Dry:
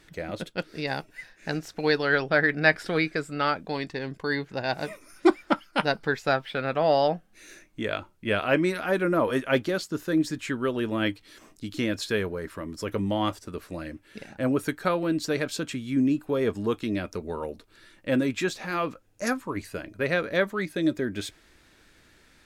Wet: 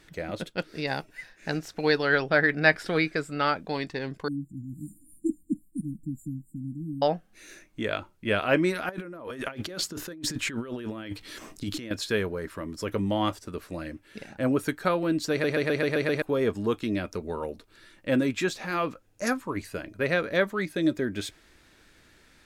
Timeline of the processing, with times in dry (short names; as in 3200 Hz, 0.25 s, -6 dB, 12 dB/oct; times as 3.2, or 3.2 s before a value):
4.28–7.02 brick-wall FIR band-stop 330–7000 Hz
8.89–11.91 negative-ratio compressor -36 dBFS
15.31 stutter in place 0.13 s, 7 plays